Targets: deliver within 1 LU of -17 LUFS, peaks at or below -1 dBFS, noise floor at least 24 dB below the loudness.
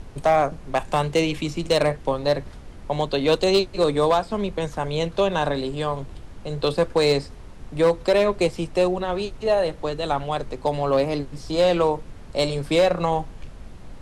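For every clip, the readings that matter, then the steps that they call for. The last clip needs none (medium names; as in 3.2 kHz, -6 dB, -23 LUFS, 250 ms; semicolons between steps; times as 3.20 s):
clipped samples 0.6%; clipping level -11.5 dBFS; noise floor -42 dBFS; noise floor target -47 dBFS; loudness -23.0 LUFS; peak level -11.5 dBFS; loudness target -17.0 LUFS
-> clip repair -11.5 dBFS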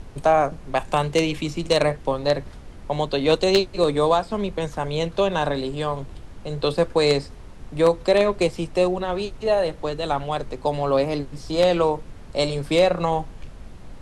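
clipped samples 0.0%; noise floor -42 dBFS; noise floor target -47 dBFS
-> noise print and reduce 6 dB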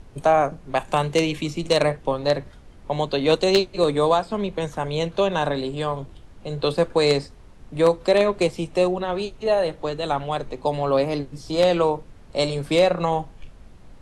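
noise floor -46 dBFS; noise floor target -47 dBFS
-> noise print and reduce 6 dB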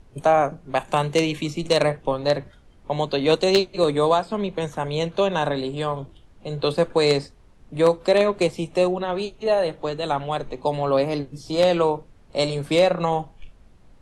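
noise floor -52 dBFS; loudness -22.5 LUFS; peak level -2.5 dBFS; loudness target -17.0 LUFS
-> trim +5.5 dB; peak limiter -1 dBFS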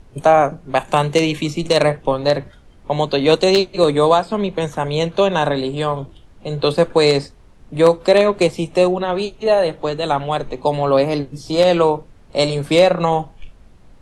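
loudness -17.0 LUFS; peak level -1.0 dBFS; noise floor -46 dBFS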